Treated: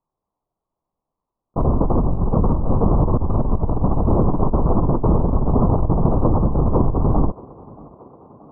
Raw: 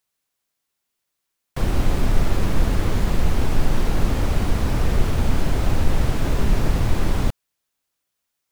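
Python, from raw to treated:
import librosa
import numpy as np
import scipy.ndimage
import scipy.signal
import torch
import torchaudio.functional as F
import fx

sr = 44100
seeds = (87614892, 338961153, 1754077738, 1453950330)

y = fx.lpc_vocoder(x, sr, seeds[0], excitation='whisper', order=10)
y = fx.peak_eq(y, sr, hz=69.0, db=-5.0, octaves=1.9)
y = fx.over_compress(y, sr, threshold_db=-21.0, ratio=-1.0)
y = scipy.signal.sosfilt(scipy.signal.ellip(4, 1.0, 40, 1100.0, 'lowpass', fs=sr, output='sos'), y)
y = fx.echo_thinned(y, sr, ms=628, feedback_pct=72, hz=160.0, wet_db=-20.5)
y = F.gain(torch.from_numpy(y), 6.0).numpy()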